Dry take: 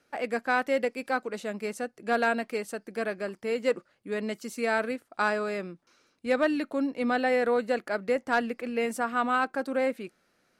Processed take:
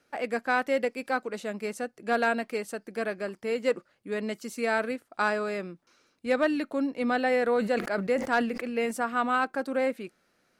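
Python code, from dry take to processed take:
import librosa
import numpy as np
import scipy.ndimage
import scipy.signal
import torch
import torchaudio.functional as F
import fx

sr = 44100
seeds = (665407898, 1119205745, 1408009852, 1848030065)

y = fx.sustainer(x, sr, db_per_s=75.0, at=(7.44, 8.91))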